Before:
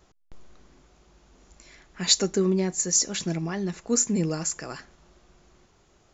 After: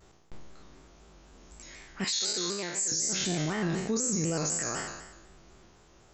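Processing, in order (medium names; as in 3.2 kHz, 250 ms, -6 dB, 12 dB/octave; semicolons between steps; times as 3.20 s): spectral sustain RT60 1.06 s; 2.04–2.92 s: high-pass 1.4 kHz 6 dB/octave; peak limiter -21 dBFS, peak gain reduction 17 dB; vibrato with a chosen wave square 4 Hz, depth 100 cents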